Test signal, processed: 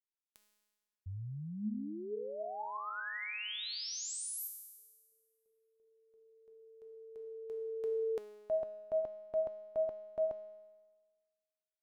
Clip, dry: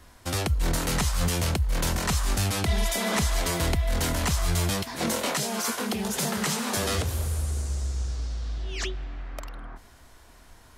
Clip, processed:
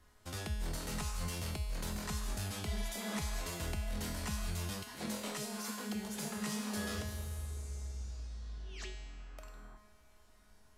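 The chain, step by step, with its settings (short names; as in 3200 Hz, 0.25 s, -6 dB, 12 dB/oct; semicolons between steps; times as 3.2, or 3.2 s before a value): low shelf 150 Hz +3.5 dB; resonator 210 Hz, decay 1.4 s, mix 90%; gain +3 dB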